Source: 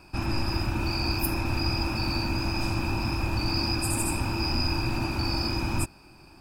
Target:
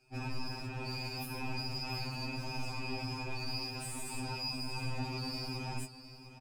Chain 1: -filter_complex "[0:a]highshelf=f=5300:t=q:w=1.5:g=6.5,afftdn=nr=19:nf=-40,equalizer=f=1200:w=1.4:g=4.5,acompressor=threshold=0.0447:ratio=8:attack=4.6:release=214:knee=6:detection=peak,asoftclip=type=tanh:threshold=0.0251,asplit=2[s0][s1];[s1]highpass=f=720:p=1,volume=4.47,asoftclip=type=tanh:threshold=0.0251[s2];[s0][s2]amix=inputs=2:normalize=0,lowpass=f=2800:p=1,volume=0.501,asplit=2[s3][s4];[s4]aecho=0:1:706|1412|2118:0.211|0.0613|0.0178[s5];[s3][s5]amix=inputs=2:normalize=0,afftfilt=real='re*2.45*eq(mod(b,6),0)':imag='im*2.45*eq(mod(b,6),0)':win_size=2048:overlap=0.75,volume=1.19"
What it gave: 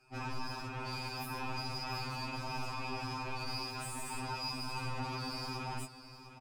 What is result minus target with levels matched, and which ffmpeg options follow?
saturation: distortion +8 dB; 1 kHz band +5.0 dB
-filter_complex "[0:a]highshelf=f=5300:t=q:w=1.5:g=6.5,afftdn=nr=19:nf=-40,equalizer=f=1200:w=1.4:g=-7.5,acompressor=threshold=0.0447:ratio=8:attack=4.6:release=214:knee=6:detection=peak,asoftclip=type=tanh:threshold=0.0531,asplit=2[s0][s1];[s1]highpass=f=720:p=1,volume=4.47,asoftclip=type=tanh:threshold=0.0251[s2];[s0][s2]amix=inputs=2:normalize=0,lowpass=f=2800:p=1,volume=0.501,asplit=2[s3][s4];[s4]aecho=0:1:706|1412|2118:0.211|0.0613|0.0178[s5];[s3][s5]amix=inputs=2:normalize=0,afftfilt=real='re*2.45*eq(mod(b,6),0)':imag='im*2.45*eq(mod(b,6),0)':win_size=2048:overlap=0.75,volume=1.19"

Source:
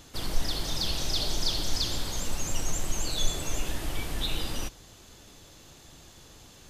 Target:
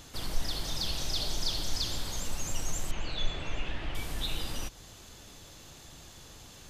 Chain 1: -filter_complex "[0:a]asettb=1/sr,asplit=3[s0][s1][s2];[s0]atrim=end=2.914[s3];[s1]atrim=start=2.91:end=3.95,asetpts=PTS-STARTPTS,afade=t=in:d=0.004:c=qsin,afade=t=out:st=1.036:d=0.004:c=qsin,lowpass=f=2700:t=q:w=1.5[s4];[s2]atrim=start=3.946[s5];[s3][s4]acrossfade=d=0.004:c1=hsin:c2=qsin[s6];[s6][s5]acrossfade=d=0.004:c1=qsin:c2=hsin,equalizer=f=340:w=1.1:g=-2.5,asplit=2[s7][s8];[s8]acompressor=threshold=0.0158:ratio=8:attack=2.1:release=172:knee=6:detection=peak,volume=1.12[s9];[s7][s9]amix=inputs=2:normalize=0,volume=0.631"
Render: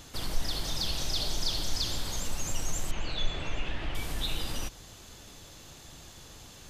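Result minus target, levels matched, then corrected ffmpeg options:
compression: peak gain reduction -9 dB
-filter_complex "[0:a]asettb=1/sr,asplit=3[s0][s1][s2];[s0]atrim=end=2.914[s3];[s1]atrim=start=2.91:end=3.95,asetpts=PTS-STARTPTS,afade=t=in:d=0.004:c=qsin,afade=t=out:st=1.036:d=0.004:c=qsin,lowpass=f=2700:t=q:w=1.5[s4];[s2]atrim=start=3.946[s5];[s3][s4]acrossfade=d=0.004:c1=hsin:c2=qsin[s6];[s6][s5]acrossfade=d=0.004:c1=qsin:c2=hsin,equalizer=f=340:w=1.1:g=-2.5,asplit=2[s7][s8];[s8]acompressor=threshold=0.00473:ratio=8:attack=2.1:release=172:knee=6:detection=peak,volume=1.12[s9];[s7][s9]amix=inputs=2:normalize=0,volume=0.631"

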